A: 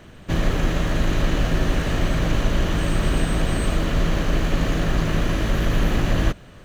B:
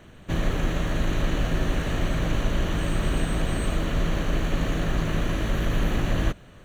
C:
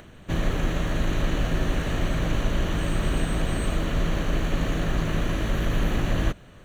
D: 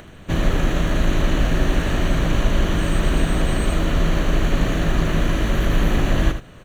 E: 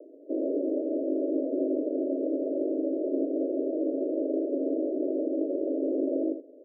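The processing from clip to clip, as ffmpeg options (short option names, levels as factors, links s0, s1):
-af "bandreject=f=5000:w=5.3,volume=0.631"
-af "acompressor=mode=upward:threshold=0.00631:ratio=2.5"
-af "aecho=1:1:78:0.335,volume=1.78"
-af "asuperpass=centerf=410:order=20:qfactor=1.1"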